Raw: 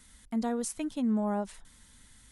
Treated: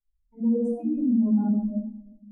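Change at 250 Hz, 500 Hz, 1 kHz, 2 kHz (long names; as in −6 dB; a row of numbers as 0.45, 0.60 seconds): +9.0 dB, +4.0 dB, −7.5 dB, below −15 dB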